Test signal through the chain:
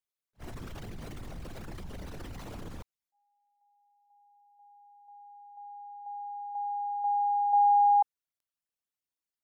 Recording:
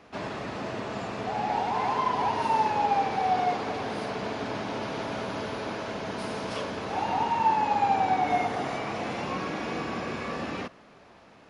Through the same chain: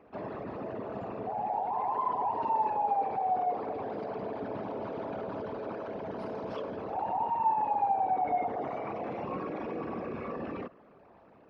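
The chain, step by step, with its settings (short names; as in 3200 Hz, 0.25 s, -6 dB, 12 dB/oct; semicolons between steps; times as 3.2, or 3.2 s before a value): formant sharpening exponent 2; attack slew limiter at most 520 dB/s; gain -4 dB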